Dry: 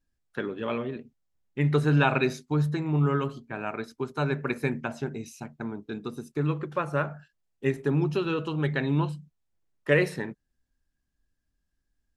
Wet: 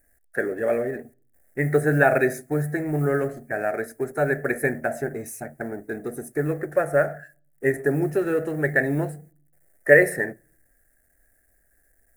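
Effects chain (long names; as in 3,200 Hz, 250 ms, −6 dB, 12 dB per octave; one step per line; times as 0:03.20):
mu-law and A-law mismatch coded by mu
drawn EQ curve 100 Hz 0 dB, 200 Hz −4 dB, 690 Hz +12 dB, 1,000 Hz −13 dB, 1,800 Hz +13 dB, 3,100 Hz −21 dB, 6,200 Hz −3 dB, 9,200 Hz +12 dB
on a send: convolution reverb RT60 0.55 s, pre-delay 4 ms, DRR 23.5 dB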